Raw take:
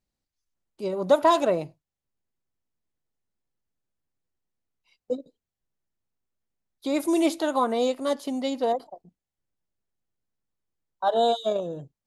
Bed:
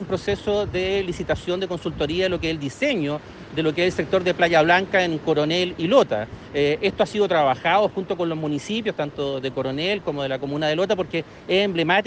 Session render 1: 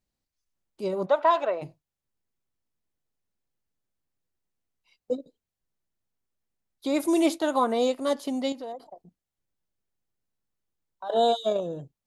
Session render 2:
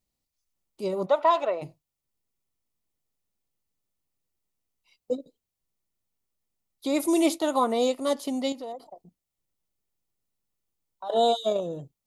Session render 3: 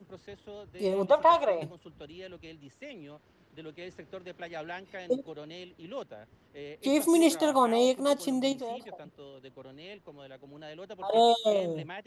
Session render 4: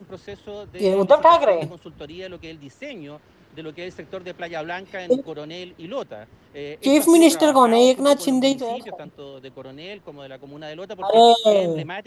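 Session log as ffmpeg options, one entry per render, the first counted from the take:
ffmpeg -i in.wav -filter_complex "[0:a]asplit=3[link_01][link_02][link_03];[link_01]afade=type=out:start_time=1.05:duration=0.02[link_04];[link_02]highpass=630,lowpass=2700,afade=type=in:start_time=1.05:duration=0.02,afade=type=out:start_time=1.61:duration=0.02[link_05];[link_03]afade=type=in:start_time=1.61:duration=0.02[link_06];[link_04][link_05][link_06]amix=inputs=3:normalize=0,asplit=3[link_07][link_08][link_09];[link_07]afade=type=out:start_time=7.23:duration=0.02[link_10];[link_08]agate=range=-33dB:threshold=-34dB:ratio=3:release=100:detection=peak,afade=type=in:start_time=7.23:duration=0.02,afade=type=out:start_time=7.97:duration=0.02[link_11];[link_09]afade=type=in:start_time=7.97:duration=0.02[link_12];[link_10][link_11][link_12]amix=inputs=3:normalize=0,asettb=1/sr,asplit=3[link_13][link_14][link_15];[link_13]atrim=end=8.524[link_16];[link_14]atrim=start=8.52:end=11.1,asetpts=PTS-STARTPTS,afade=type=in:duration=0.004:curve=qsin,afade=type=out:start_time=2.576:duration=0.004:curve=qsin,acompressor=threshold=-40dB:ratio=2.5:attack=3.2:release=140:knee=1:detection=peak[link_17];[link_15]atrim=start=11.096[link_18];[link_16][link_17]acrossfade=duration=0.004:curve1=hsin:curve2=qsin[link_19];[link_19][link_18]acrossfade=duration=0.004:curve1=qsin:curve2=hsin" out.wav
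ffmpeg -i in.wav -af "highshelf=frequency=6500:gain=6,bandreject=frequency=1600:width=5.9" out.wav
ffmpeg -i in.wav -i bed.wav -filter_complex "[1:a]volume=-23.5dB[link_01];[0:a][link_01]amix=inputs=2:normalize=0" out.wav
ffmpeg -i in.wav -af "volume=10dB,alimiter=limit=-3dB:level=0:latency=1" out.wav

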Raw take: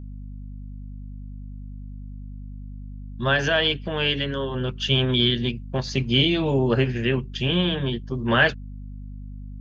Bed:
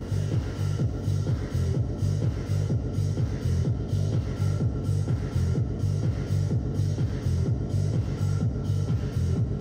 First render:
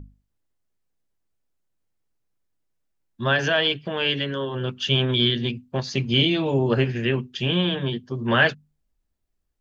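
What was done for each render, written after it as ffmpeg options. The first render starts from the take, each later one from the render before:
ffmpeg -i in.wav -af "bandreject=frequency=50:width_type=h:width=6,bandreject=frequency=100:width_type=h:width=6,bandreject=frequency=150:width_type=h:width=6,bandreject=frequency=200:width_type=h:width=6,bandreject=frequency=250:width_type=h:width=6" out.wav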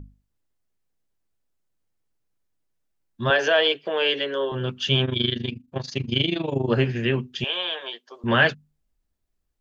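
ffmpeg -i in.wav -filter_complex "[0:a]asettb=1/sr,asplit=3[link_01][link_02][link_03];[link_01]atrim=end=3.304[link_04];[link_02]atrim=start=3.3:end=4.52,asetpts=PTS-STARTPTS,afade=type=in:duration=0.004:curve=qsin,afade=type=out:start_time=1.216:duration=0.004:curve=qsin,highpass=frequency=450:width_type=q:width=1.7[link_05];[link_03]atrim=start=4.516[link_06];[link_04][link_05]acrossfade=duration=0.004:curve1=hsin:curve2=qsin[link_07];[link_07][link_06]acrossfade=duration=0.004:curve1=qsin:curve2=hsin,asettb=1/sr,asplit=3[link_08][link_09][link_10];[link_08]atrim=end=5.054[link_11];[link_09]atrim=start=5.05:end=6.7,asetpts=PTS-STARTPTS,afade=type=in:duration=0.004:curve=qsin,afade=type=out:start_time=1.646:duration=0.004:curve=qsin,tremolo=f=25:d=0.824[link_12];[link_10]atrim=start=6.696[link_13];[link_11][link_12]acrossfade=duration=0.004:curve1=hsin:curve2=qsin[link_14];[link_14][link_13]acrossfade=duration=0.004:curve1=qsin:curve2=hsin,asettb=1/sr,asplit=3[link_15][link_16][link_17];[link_15]atrim=end=7.444[link_18];[link_16]atrim=start=7.44:end=8.24,asetpts=PTS-STARTPTS,afade=type=in:duration=0.004:curve=qsin,afade=type=out:start_time=0.796:duration=0.004:curve=qsin,highpass=frequency=550:width=0.5412,highpass=frequency=550:width=1.3066[link_19];[link_17]atrim=start=8.236[link_20];[link_18][link_19]acrossfade=duration=0.004:curve1=hsin:curve2=qsin[link_21];[link_21][link_20]acrossfade=duration=0.004:curve1=qsin:curve2=hsin" out.wav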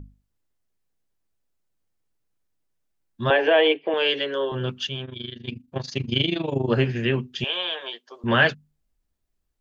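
ffmpeg -i in.wav -filter_complex "[0:a]asettb=1/sr,asplit=3[link_01][link_02][link_03];[link_01]atrim=end=3.304[link_04];[link_02]atrim=start=3.3:end=3.94,asetpts=PTS-STARTPTS,afade=type=in:duration=0.004:curve=qsin,afade=type=out:start_time=0.636:duration=0.004:curve=qsin,highpass=230,equalizer=frequency=310:width_type=q:width=4:gain=9,equalizer=frequency=480:width_type=q:width=4:gain=4,equalizer=frequency=840:width_type=q:width=4:gain=7,equalizer=frequency=1400:width_type=q:width=4:gain=-7,equalizer=frequency=2200:width_type=q:width=4:gain=5,lowpass=frequency=3100:width=0.5412,lowpass=frequency=3100:width=1.3066[link_05];[link_03]atrim=start=3.936[link_06];[link_04][link_05]acrossfade=duration=0.004:curve1=hsin:curve2=qsin[link_07];[link_07][link_06]acrossfade=duration=0.004:curve1=qsin:curve2=hsin,asplit=3[link_08][link_09][link_10];[link_08]atrim=end=4.87,asetpts=PTS-STARTPTS,afade=type=out:start_time=4.67:duration=0.2:curve=log:silence=0.266073[link_11];[link_09]atrim=start=4.87:end=5.47,asetpts=PTS-STARTPTS,volume=-11.5dB[link_12];[link_10]atrim=start=5.47,asetpts=PTS-STARTPTS,afade=type=in:duration=0.2:curve=log:silence=0.266073[link_13];[link_11][link_12][link_13]concat=n=3:v=0:a=1" out.wav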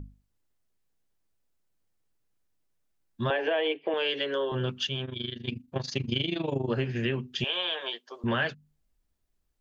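ffmpeg -i in.wav -af "acompressor=threshold=-26dB:ratio=4" out.wav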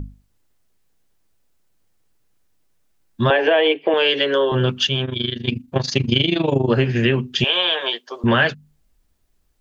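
ffmpeg -i in.wav -af "volume=11.5dB" out.wav

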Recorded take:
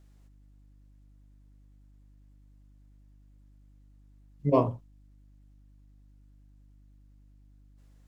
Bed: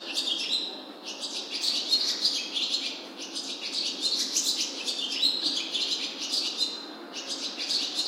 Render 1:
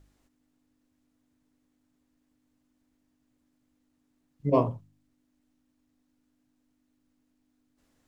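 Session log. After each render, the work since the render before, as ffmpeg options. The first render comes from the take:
ffmpeg -i in.wav -af "bandreject=frequency=50:width_type=h:width=4,bandreject=frequency=100:width_type=h:width=4,bandreject=frequency=150:width_type=h:width=4,bandreject=frequency=200:width_type=h:width=4" out.wav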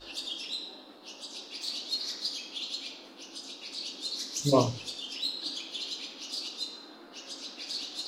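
ffmpeg -i in.wav -i bed.wav -filter_complex "[1:a]volume=-8.5dB[link_01];[0:a][link_01]amix=inputs=2:normalize=0" out.wav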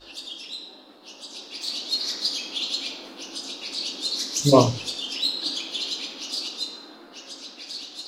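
ffmpeg -i in.wav -af "dynaudnorm=framelen=350:gausssize=11:maxgain=11dB" out.wav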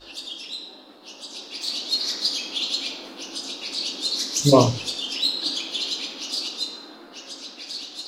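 ffmpeg -i in.wav -af "volume=2dB,alimiter=limit=-3dB:level=0:latency=1" out.wav

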